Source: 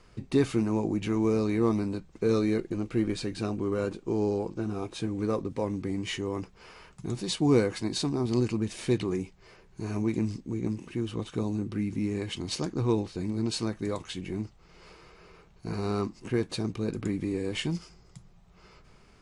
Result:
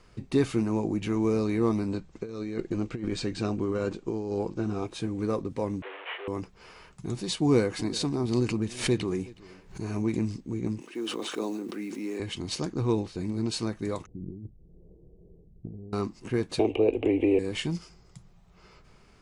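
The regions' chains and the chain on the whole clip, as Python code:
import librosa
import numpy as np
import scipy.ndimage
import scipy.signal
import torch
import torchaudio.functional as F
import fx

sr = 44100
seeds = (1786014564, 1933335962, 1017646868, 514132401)

y = fx.chain(x, sr, fx.over_compress(threshold_db=-29.0, ratio=-0.5),
    fx.steep_lowpass(hz=8500.0, slope=48), at=(1.88, 4.87))
y = fx.chain(y, sr, fx.delta_mod(bps=16000, step_db=-32.0),
    fx.steep_highpass(hz=430.0, slope=48), at=(5.82, 6.28))
y = fx.chain(y, sr, fx.echo_single(ms=369, db=-21.5),
    fx.pre_swell(db_per_s=130.0), at=(7.42, 10.23))
y = fx.chain(y, sr, fx.block_float(bits=7),
    fx.highpass(hz=280.0, slope=24),
    fx.sustainer(db_per_s=24.0), at=(10.81, 12.2))
y = fx.chain(y, sr, fx.gaussian_blur(sigma=21.0),
    fx.over_compress(threshold_db=-40.0, ratio=-1.0), at=(14.06, 15.93))
y = fx.chain(y, sr, fx.curve_eq(hz=(100.0, 160.0, 250.0, 440.0, 780.0, 1400.0, 2800.0, 4700.0, 7800.0), db=(0, -28, 2, 13, 13, -15, 15, -22, -16)),
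    fx.band_squash(depth_pct=100), at=(16.59, 17.39))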